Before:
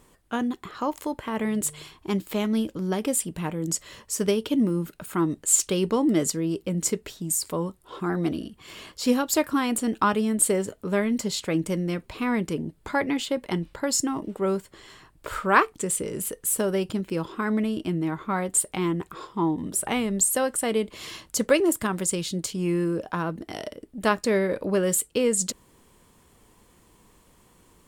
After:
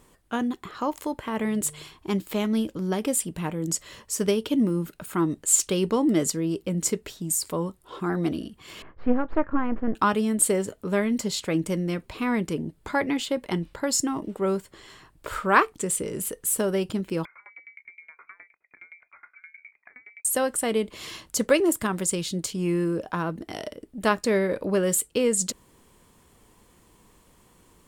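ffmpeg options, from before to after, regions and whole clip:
-filter_complex "[0:a]asettb=1/sr,asplit=3[s0][s1][s2];[s0]atrim=end=8.824[s3];[s1]atrim=start=8.82:end=9.95,asetpts=PTS-STARTPTS,afade=t=in:d=0.004:c=qsin,afade=t=out:st=1.126:d=0.004:c=qsin,aeval=exprs='if(lt(val(0),0),0.447*val(0),val(0))':c=same,lowpass=f=1800:w=0.5412,lowpass=f=1800:w=1.3066,lowshelf=f=69:g=11[s4];[s2]atrim=start=9.946[s5];[s3][s4]acrossfade=d=0.004:c1=hsin:c2=qsin[s6];[s6][s5]acrossfade=d=0.004:c1=qsin:c2=hsin,asettb=1/sr,asplit=3[s7][s8][s9];[s7]atrim=end=17.254[s10];[s8]atrim=start=17.25:end=20.25,asetpts=PTS-STARTPTS,afade=t=in:d=0.004:c=qsin,afade=t=out:st=2.996:d=0.004:c=qsin,acompressor=threshold=0.0141:ratio=16:attack=3.2:release=140:knee=1:detection=peak,lowpass=f=2100:t=q:w=0.5098,lowpass=f=2100:t=q:w=0.6013,lowpass=f=2100:t=q:w=0.9,lowpass=f=2100:t=q:w=2.563,afreqshift=-2500,aeval=exprs='val(0)*pow(10,-26*if(lt(mod(9.6*n/s,1),2*abs(9.6)/1000),1-mod(9.6*n/s,1)/(2*abs(9.6)/1000),(mod(9.6*n/s,1)-2*abs(9.6)/1000)/(1-2*abs(9.6)/1000))/20)':c=same[s11];[s9]atrim=start=20.246[s12];[s10][s11]acrossfade=d=0.004:c1=hsin:c2=qsin[s13];[s13][s12]acrossfade=d=0.004:c1=qsin:c2=hsin"

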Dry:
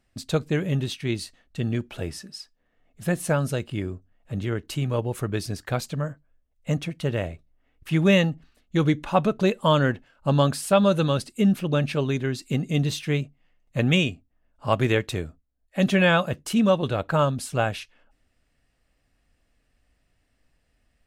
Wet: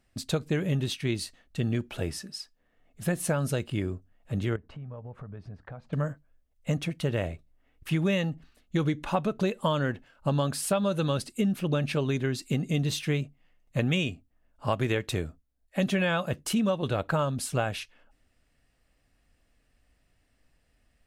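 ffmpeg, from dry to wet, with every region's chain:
-filter_complex "[0:a]asettb=1/sr,asplit=3[s0][s1][s2];[s0]atrim=end=4.564[s3];[s1]atrim=start=4.56:end=5.93,asetpts=PTS-STARTPTS,afade=t=in:d=0.004:c=qsin,afade=t=out:st=1.366:d=0.004:c=qsin,lowpass=1100,equalizer=f=340:t=o:w=0.53:g=-12.5,acompressor=threshold=0.0112:ratio=6:attack=3.2:release=140:knee=1:detection=peak[s4];[s2]atrim=start=5.926[s5];[s3][s4]acrossfade=d=0.004:c1=hsin:c2=qsin[s6];[s6][s5]acrossfade=d=0.004:c1=qsin:c2=hsin,equalizer=f=11000:w=1.5:g=2,acompressor=threshold=0.0708:ratio=6"

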